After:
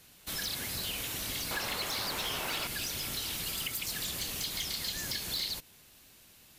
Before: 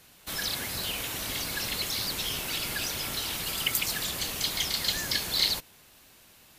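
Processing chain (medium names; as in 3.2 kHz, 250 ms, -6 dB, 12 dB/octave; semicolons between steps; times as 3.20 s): peaking EQ 920 Hz -4 dB 2.5 oct, from 1.51 s +9.5 dB, from 2.67 s -5 dB; compression 3:1, threshold -31 dBFS, peak gain reduction 8 dB; hard clipper -27.5 dBFS, distortion -18 dB; trim -1 dB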